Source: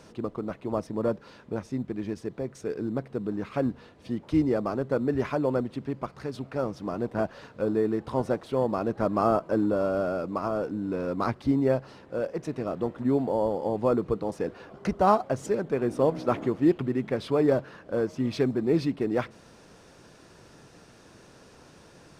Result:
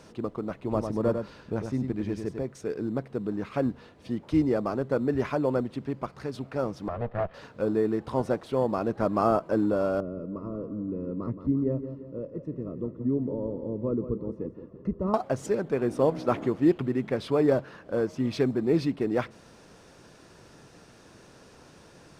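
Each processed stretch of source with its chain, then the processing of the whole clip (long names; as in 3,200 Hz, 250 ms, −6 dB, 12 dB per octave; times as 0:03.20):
0:00.56–0:02.43: low-shelf EQ 100 Hz +9 dB + single-tap delay 99 ms −6.5 dB
0:06.88–0:07.34: lower of the sound and its delayed copy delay 1.6 ms + log-companded quantiser 8 bits + high-frequency loss of the air 390 metres
0:10.00–0:15.14: moving average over 57 samples + repeating echo 172 ms, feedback 47%, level −10.5 dB
whole clip: no processing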